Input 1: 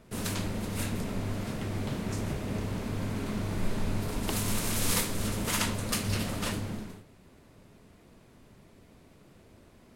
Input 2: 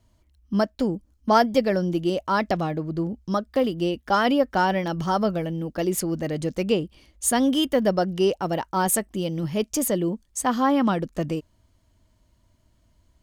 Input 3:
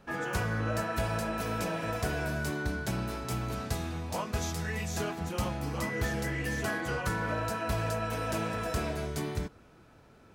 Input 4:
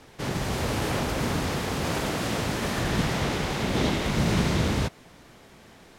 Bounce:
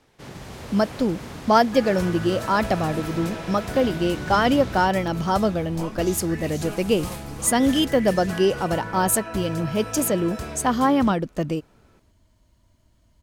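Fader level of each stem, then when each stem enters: -11.0 dB, +1.5 dB, -1.0 dB, -10.0 dB; 2.15 s, 0.20 s, 1.65 s, 0.00 s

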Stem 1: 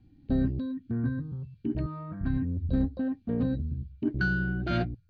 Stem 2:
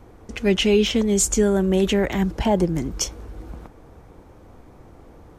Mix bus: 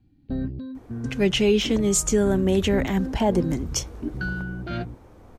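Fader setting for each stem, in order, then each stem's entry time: -2.0 dB, -2.0 dB; 0.00 s, 0.75 s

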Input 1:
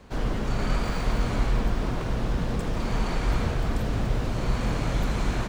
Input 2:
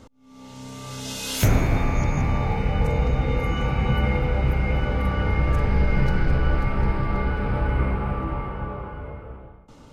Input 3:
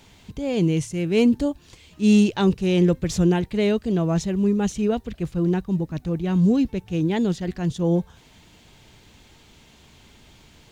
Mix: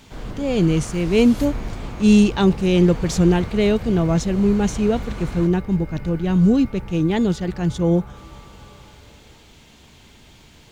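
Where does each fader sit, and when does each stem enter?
-5.5 dB, -14.0 dB, +3.0 dB; 0.00 s, 0.00 s, 0.00 s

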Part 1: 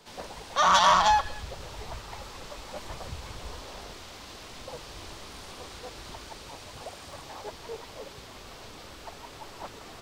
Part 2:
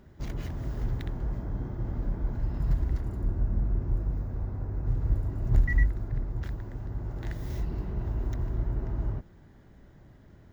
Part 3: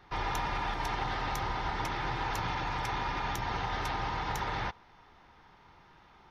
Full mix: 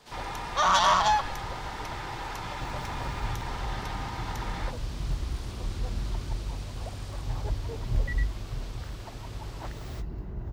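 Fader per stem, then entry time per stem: -2.0 dB, -4.5 dB, -3.5 dB; 0.00 s, 2.40 s, 0.00 s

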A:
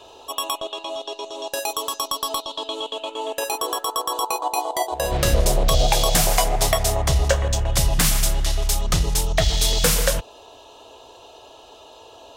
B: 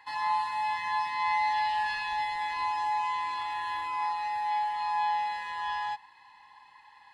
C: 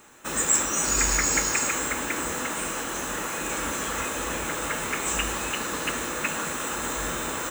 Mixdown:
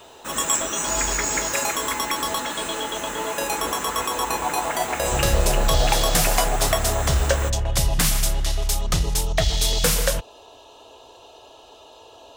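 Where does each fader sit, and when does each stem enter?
-1.5 dB, -6.5 dB, -1.0 dB; 0.00 s, 0.65 s, 0.00 s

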